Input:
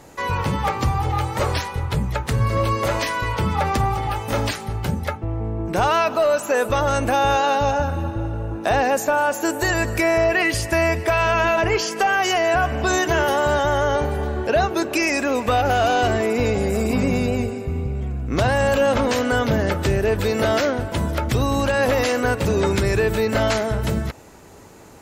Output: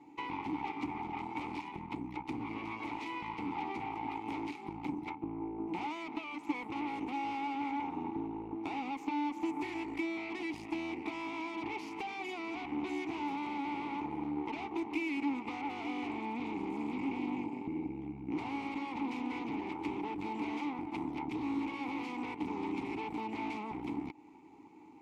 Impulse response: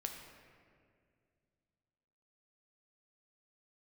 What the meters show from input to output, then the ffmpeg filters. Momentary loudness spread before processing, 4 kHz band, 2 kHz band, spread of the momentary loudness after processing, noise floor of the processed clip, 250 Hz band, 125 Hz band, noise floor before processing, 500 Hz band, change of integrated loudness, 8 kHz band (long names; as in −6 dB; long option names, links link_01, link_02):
7 LU, −21.5 dB, −20.0 dB, 4 LU, −48 dBFS, −10.5 dB, −28.5 dB, −33 dBFS, −25.0 dB, −18.0 dB, below −30 dB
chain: -filter_complex "[0:a]aeval=exprs='0.335*(cos(1*acos(clip(val(0)/0.335,-1,1)))-cos(1*PI/2))+0.15*(cos(6*acos(clip(val(0)/0.335,-1,1)))-cos(6*PI/2))':channel_layout=same,acompressor=threshold=-19dB:ratio=6,asplit=3[link_01][link_02][link_03];[link_01]bandpass=frequency=300:width_type=q:width=8,volume=0dB[link_04];[link_02]bandpass=frequency=870:width_type=q:width=8,volume=-6dB[link_05];[link_03]bandpass=frequency=2240:width_type=q:width=8,volume=-9dB[link_06];[link_04][link_05][link_06]amix=inputs=3:normalize=0"